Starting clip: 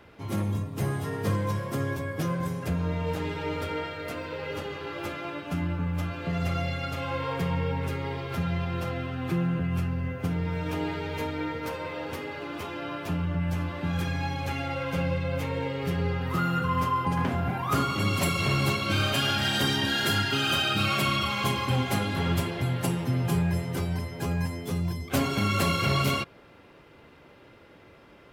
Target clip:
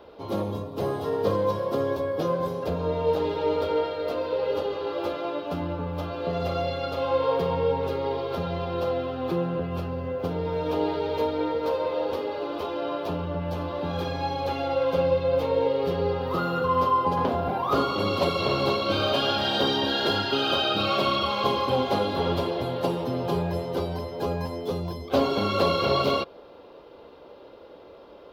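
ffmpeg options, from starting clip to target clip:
-filter_complex "[0:a]equalizer=f=125:t=o:w=1:g=-9,equalizer=f=500:t=o:w=1:g=11,equalizer=f=1k:t=o:w=1:g=5,equalizer=f=2k:t=o:w=1:g=-10,equalizer=f=4k:t=o:w=1:g=9,equalizer=f=8k:t=o:w=1:g=-12,acrossover=split=5800[a][b];[b]acompressor=threshold=-50dB:ratio=4:attack=1:release=60[c];[a][c]amix=inputs=2:normalize=0"

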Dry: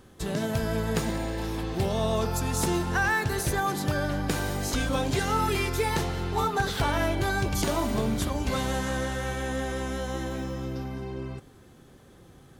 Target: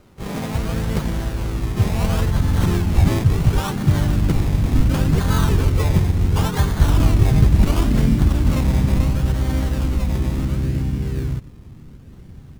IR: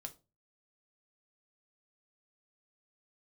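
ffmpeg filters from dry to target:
-filter_complex "[0:a]acrusher=samples=24:mix=1:aa=0.000001:lfo=1:lforange=14.4:lforate=0.71,asubboost=boost=5.5:cutoff=220,asplit=3[a][b][c];[b]asetrate=33038,aresample=44100,atempo=1.33484,volume=-5dB[d];[c]asetrate=52444,aresample=44100,atempo=0.840896,volume=-6dB[e];[a][d][e]amix=inputs=3:normalize=0"

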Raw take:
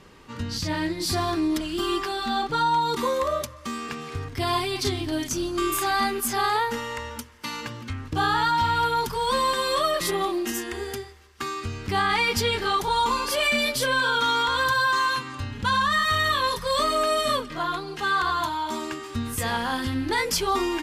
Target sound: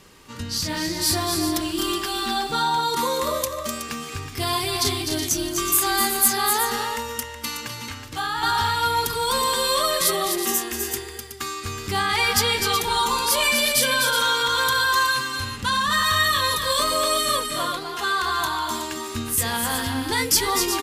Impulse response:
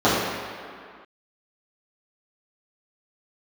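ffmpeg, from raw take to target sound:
-filter_complex "[0:a]crystalizer=i=2.5:c=0,asplit=2[a][b];[b]aecho=0:1:253|371:0.501|0.335[c];[a][c]amix=inputs=2:normalize=0,asettb=1/sr,asplit=3[d][e][f];[d]atrim=end=7.884[g];[e]atrim=start=7.88:end=8.43,asetpts=PTS-STARTPTS,afade=t=in:d=0.004:c=qsin,afade=t=out:st=0.546:d=0.004:c=qsin,acrossover=split=110|610|3100[h][i][j][k];[h]acompressor=threshold=-42dB:ratio=4[l];[i]acompressor=threshold=-40dB:ratio=4[m];[j]acompressor=threshold=-23dB:ratio=4[n];[k]acompressor=threshold=-35dB:ratio=4[o];[l][m][n][o]amix=inputs=4:normalize=0[p];[f]atrim=start=8.426[q];[g][p]acrossfade=d=0.004:c1=hsin:c2=qsin[r];[r][q]acrossfade=d=0.004:c1=qsin:c2=hsin,volume=-1.5dB"

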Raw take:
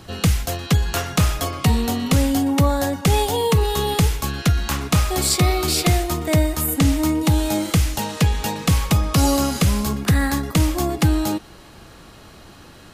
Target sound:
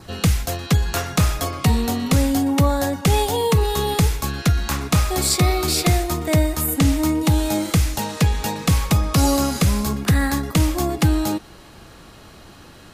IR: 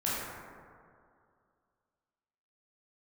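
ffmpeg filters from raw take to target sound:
-af "adynamicequalizer=threshold=0.00447:dfrequency=3000:dqfactor=6.6:tfrequency=3000:tqfactor=6.6:attack=5:release=100:ratio=0.375:range=2.5:mode=cutabove:tftype=bell"

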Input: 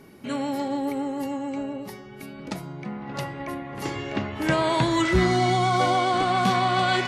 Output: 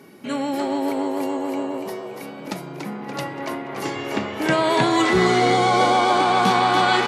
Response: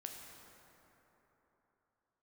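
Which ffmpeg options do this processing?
-filter_complex "[0:a]highpass=170,asplit=6[a][b][c][d][e][f];[b]adelay=287,afreqshift=100,volume=-6dB[g];[c]adelay=574,afreqshift=200,volume=-13.3dB[h];[d]adelay=861,afreqshift=300,volume=-20.7dB[i];[e]adelay=1148,afreqshift=400,volume=-28dB[j];[f]adelay=1435,afreqshift=500,volume=-35.3dB[k];[a][g][h][i][j][k]amix=inputs=6:normalize=0,volume=3.5dB"

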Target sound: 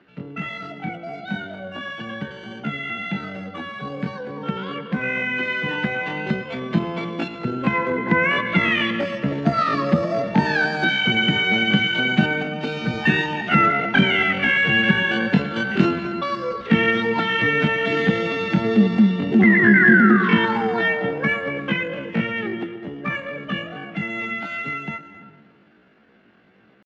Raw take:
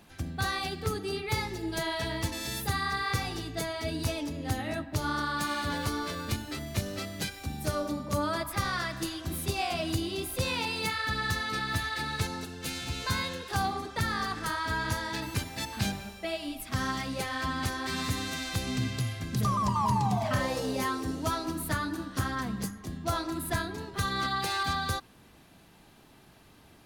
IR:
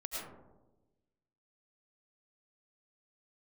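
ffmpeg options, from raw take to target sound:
-filter_complex "[0:a]asplit=2[a][b];[1:a]atrim=start_sample=2205,adelay=111[c];[b][c]afir=irnorm=-1:irlink=0,volume=-12.5dB[d];[a][d]amix=inputs=2:normalize=0,dynaudnorm=f=410:g=31:m=13dB,asetrate=76340,aresample=44100,atempo=0.577676,highpass=120,equalizer=f=130:t=q:w=4:g=-3,equalizer=f=210:t=q:w=4:g=7,equalizer=f=540:t=q:w=4:g=-4,equalizer=f=1.1k:t=q:w=4:g=-5,equalizer=f=1.6k:t=q:w=4:g=5,lowpass=f=3k:w=0.5412,lowpass=f=3k:w=1.3066,volume=1.5dB"

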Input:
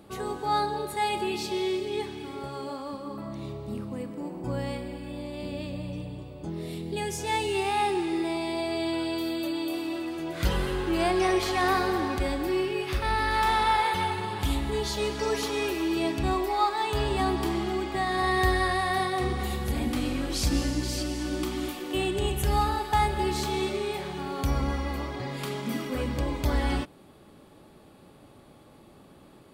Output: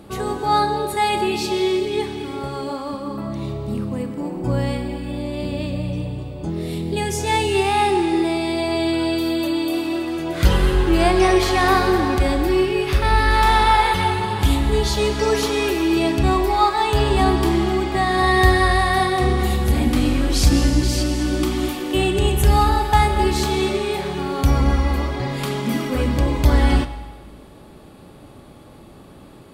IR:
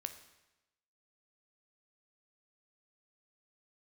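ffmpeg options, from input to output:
-filter_complex "[0:a]asplit=2[a][b];[1:a]atrim=start_sample=2205,asetrate=27342,aresample=44100,lowshelf=f=150:g=7.5[c];[b][c]afir=irnorm=-1:irlink=0,volume=3.5dB[d];[a][d]amix=inputs=2:normalize=0"

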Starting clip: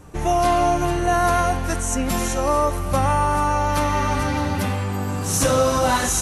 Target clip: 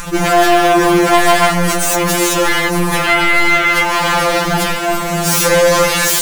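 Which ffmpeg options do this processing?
-filter_complex "[0:a]asettb=1/sr,asplit=3[a][b][c];[a]atrim=end=3.054[d];[b]atrim=start=3.05:end=3.83,asetpts=PTS-STARTPTS,afade=t=in:d=0.004:c=qsin,afade=t=out:st=0.776:d=0.004:c=qsin,equalizer=f=590:w=2.3:g=14.5[e];[c]atrim=start=3.826[f];[d][e]acrossfade=d=0.004:c1=hsin:c2=qsin[g];[g][f]acrossfade=d=0.004:c1=qsin:c2=hsin,acrossover=split=110|880|3400[h][i][j][k];[i]acrusher=bits=6:mix=0:aa=0.000001[l];[h][l][j][k]amix=inputs=4:normalize=0,acompressor=threshold=-19dB:ratio=6,aeval=exprs='0.224*sin(PI/2*3.55*val(0)/0.224)':c=same,acompressor=mode=upward:threshold=-19dB:ratio=2.5,afftfilt=real='re*2.83*eq(mod(b,8),0)':imag='im*2.83*eq(mod(b,8),0)':win_size=2048:overlap=0.75,volume=5dB"

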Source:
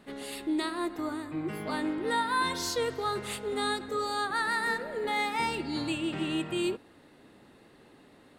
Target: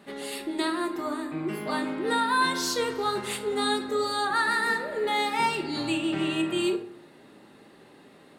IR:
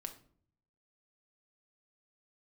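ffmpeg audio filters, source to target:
-filter_complex "[0:a]highpass=f=170:p=1[a];[1:a]atrim=start_sample=2205[b];[a][b]afir=irnorm=-1:irlink=0,volume=7.5dB"

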